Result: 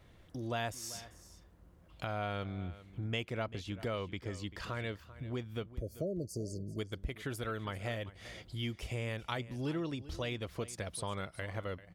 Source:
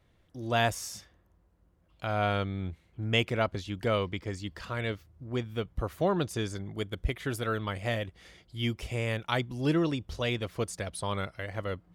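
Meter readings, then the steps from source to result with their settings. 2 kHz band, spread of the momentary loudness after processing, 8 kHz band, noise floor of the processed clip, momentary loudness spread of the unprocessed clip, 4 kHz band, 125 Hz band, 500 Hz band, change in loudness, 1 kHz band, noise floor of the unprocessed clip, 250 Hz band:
-8.0 dB, 7 LU, -4.5 dB, -60 dBFS, 11 LU, -8.0 dB, -6.5 dB, -8.0 dB, -7.5 dB, -8.5 dB, -67 dBFS, -7.5 dB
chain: spectral delete 5.79–6.79, 680–4200 Hz; compressor 2.5:1, threshold -49 dBFS, peak gain reduction 18 dB; on a send: echo 0.391 s -16.5 dB; on the sum: gain +6.5 dB

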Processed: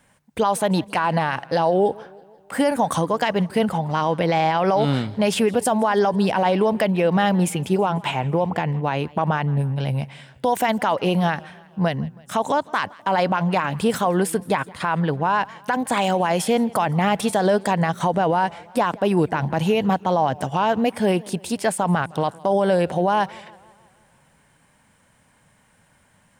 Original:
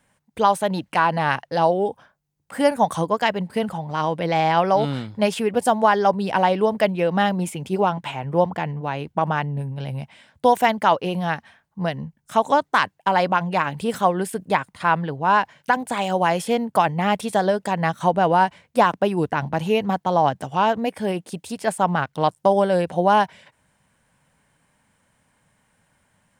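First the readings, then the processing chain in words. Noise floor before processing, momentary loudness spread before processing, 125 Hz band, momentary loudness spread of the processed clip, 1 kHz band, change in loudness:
-70 dBFS, 9 LU, +3.5 dB, 5 LU, -2.0 dB, 0.0 dB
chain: limiter -16 dBFS, peak gain reduction 11 dB; warbling echo 0.163 s, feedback 56%, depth 135 cents, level -23 dB; gain +5.5 dB

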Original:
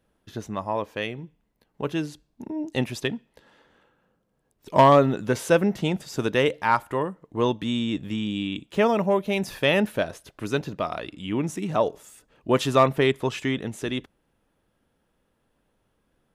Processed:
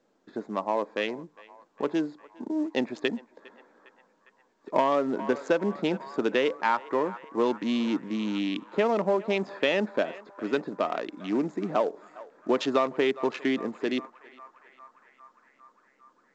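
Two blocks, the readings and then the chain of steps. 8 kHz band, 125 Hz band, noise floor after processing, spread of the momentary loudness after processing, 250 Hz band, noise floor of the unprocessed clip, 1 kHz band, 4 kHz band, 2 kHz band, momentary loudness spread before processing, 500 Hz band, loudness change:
under -10 dB, -13.5 dB, -67 dBFS, 9 LU, -2.5 dB, -72 dBFS, -5.0 dB, -4.5 dB, -3.5 dB, 14 LU, -3.0 dB, -4.0 dB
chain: Wiener smoothing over 15 samples; air absorption 51 m; in parallel at -7 dB: soft clip -25 dBFS, distortion -5 dB; on the sum: HPF 230 Hz 24 dB/oct; on a send: narrowing echo 0.405 s, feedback 78%, band-pass 1300 Hz, level -20 dB; on the sum: compressor 6:1, threshold -20 dBFS, peak gain reduction 10 dB; µ-law 128 kbps 16000 Hz

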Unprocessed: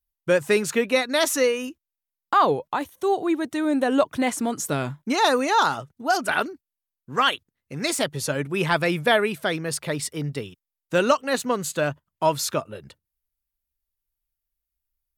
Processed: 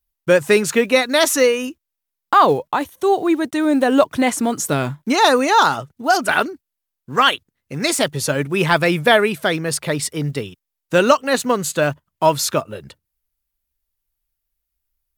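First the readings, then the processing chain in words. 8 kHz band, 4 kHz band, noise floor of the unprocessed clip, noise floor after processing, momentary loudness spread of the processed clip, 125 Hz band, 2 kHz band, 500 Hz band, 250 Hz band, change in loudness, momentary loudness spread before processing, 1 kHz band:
+6.0 dB, +6.0 dB, under -85 dBFS, -81 dBFS, 10 LU, +6.0 dB, +6.0 dB, +6.0 dB, +6.0 dB, +6.0 dB, 10 LU, +6.0 dB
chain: block floating point 7-bit; gain +6 dB

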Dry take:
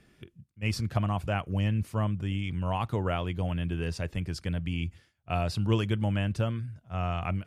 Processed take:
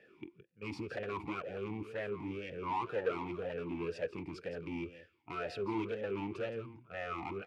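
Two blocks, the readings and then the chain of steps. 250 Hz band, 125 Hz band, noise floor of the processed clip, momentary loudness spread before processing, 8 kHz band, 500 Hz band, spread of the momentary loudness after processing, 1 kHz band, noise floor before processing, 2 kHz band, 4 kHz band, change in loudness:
-8.5 dB, -20.0 dB, -68 dBFS, 6 LU, under -15 dB, -2.0 dB, 9 LU, -5.5 dB, -69 dBFS, -5.5 dB, -12.5 dB, -9.0 dB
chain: bell 940 Hz +8 dB 0.61 oct; hard clip -32 dBFS, distortion -5 dB; echo 0.167 s -12.5 dB; vowel sweep e-u 2 Hz; gain +11.5 dB

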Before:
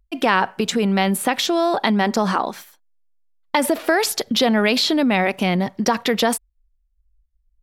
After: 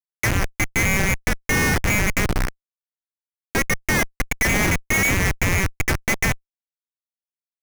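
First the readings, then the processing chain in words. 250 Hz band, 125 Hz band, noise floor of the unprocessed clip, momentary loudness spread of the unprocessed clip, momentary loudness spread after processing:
-7.0 dB, +5.5 dB, -66 dBFS, 5 LU, 6 LU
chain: CVSD 16 kbps; bell 490 Hz +6 dB 1.2 oct; inverted band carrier 2500 Hz; Schmitt trigger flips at -14 dBFS; gain +1.5 dB

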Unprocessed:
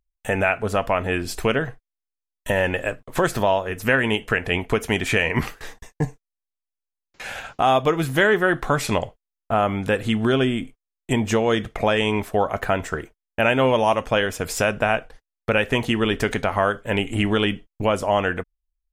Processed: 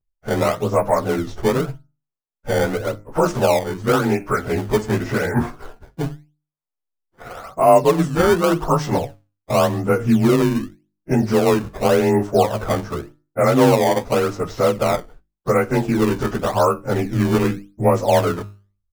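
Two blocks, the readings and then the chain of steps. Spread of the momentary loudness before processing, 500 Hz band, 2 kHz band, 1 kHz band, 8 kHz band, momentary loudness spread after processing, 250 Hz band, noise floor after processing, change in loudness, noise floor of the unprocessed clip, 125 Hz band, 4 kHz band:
11 LU, +4.5 dB, -5.5 dB, +2.5 dB, +2.5 dB, 13 LU, +4.5 dB, -82 dBFS, +3.0 dB, under -85 dBFS, +4.5 dB, -4.0 dB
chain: inharmonic rescaling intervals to 91%; band shelf 2700 Hz -9.5 dB; notches 50/100/150/200/250/300/350 Hz; low-pass opened by the level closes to 1700 Hz, open at -16.5 dBFS; flange 0.13 Hz, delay 5 ms, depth 5.8 ms, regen +83%; in parallel at -3.5 dB: decimation with a swept rate 19×, swing 160% 0.88 Hz; on the sum: gain +6.5 dB

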